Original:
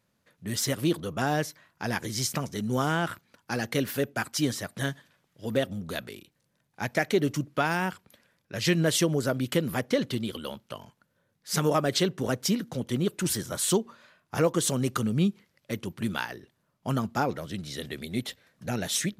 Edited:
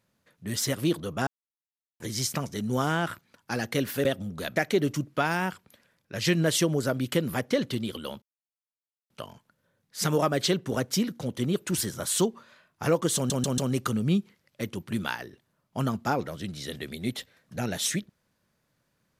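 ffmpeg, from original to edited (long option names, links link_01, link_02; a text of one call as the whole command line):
ffmpeg -i in.wav -filter_complex "[0:a]asplit=9[link_01][link_02][link_03][link_04][link_05][link_06][link_07][link_08][link_09];[link_01]atrim=end=1.27,asetpts=PTS-STARTPTS,afade=type=out:start_time=1.266:duration=0.004:curve=hsin[link_10];[link_02]atrim=start=1.27:end=2,asetpts=PTS-STARTPTS,volume=0[link_11];[link_03]atrim=start=2:end=4.052,asetpts=PTS-STARTPTS,afade=type=in:duration=0.004:curve=hsin[link_12];[link_04]atrim=start=5.558:end=6.072[link_13];[link_05]atrim=start=6.958:end=10.62,asetpts=PTS-STARTPTS,afade=type=out:start_time=3.658:duration=0.004:curve=hsin,apad=pad_dur=0.88[link_14];[link_06]atrim=start=10.62:end=14.822,asetpts=PTS-STARTPTS,afade=type=in:duration=0.004:curve=hsin[link_15];[link_07]atrim=start=14.678:end=14.822[link_16];[link_08]atrim=start=14.678:end=14.822[link_17];[link_09]atrim=start=14.678[link_18];[link_10][link_11][link_12]concat=n=3:v=0:a=1[link_19];[link_19][link_13]acrossfade=duration=0.004:curve1=hsin:curve2=hsin[link_20];[link_14][link_15]concat=n=2:v=0:a=1[link_21];[link_20][link_21]acrossfade=duration=0.004:curve1=hsin:curve2=hsin[link_22];[link_22][link_16]acrossfade=duration=0.004:curve1=hsin:curve2=hsin[link_23];[link_23][link_17]acrossfade=duration=0.004:curve1=hsin:curve2=hsin[link_24];[link_24][link_18]acrossfade=duration=0.004:curve1=hsin:curve2=hsin" out.wav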